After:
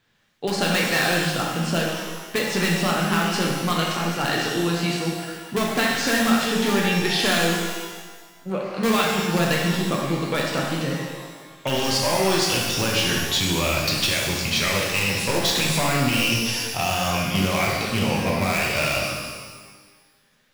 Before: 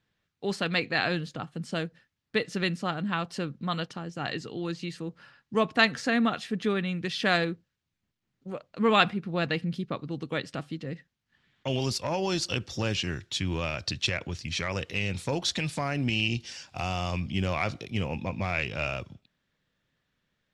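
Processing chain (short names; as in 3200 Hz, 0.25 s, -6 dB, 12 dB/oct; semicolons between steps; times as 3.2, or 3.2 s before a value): low shelf 240 Hz -7 dB; in parallel at -4 dB: wrapped overs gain 22 dB; on the sum: compressor, threshold -27 dBFS, peak gain reduction 11 dB; shimmer reverb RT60 1.4 s, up +12 st, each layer -8 dB, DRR -2.5 dB; gain +5.5 dB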